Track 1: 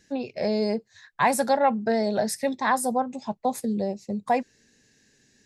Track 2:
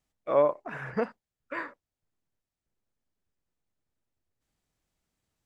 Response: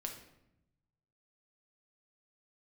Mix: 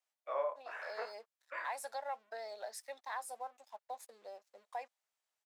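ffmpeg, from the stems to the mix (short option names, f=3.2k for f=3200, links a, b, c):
-filter_complex "[0:a]aeval=exprs='sgn(val(0))*max(abs(val(0))-0.00422,0)':c=same,adelay=450,volume=-15dB[a];[1:a]flanger=delay=18.5:depth=7:speed=0.95,volume=-2dB[b];[a][b]amix=inputs=2:normalize=0,highpass=f=590:w=0.5412,highpass=f=590:w=1.3066,acompressor=threshold=-42dB:ratio=1.5"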